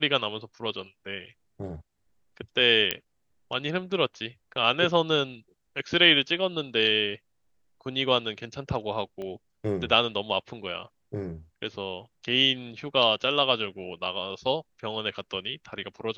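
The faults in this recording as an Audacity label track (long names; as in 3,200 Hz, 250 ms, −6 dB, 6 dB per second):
2.910000	2.910000	click −7 dBFS
9.220000	9.220000	click −26 dBFS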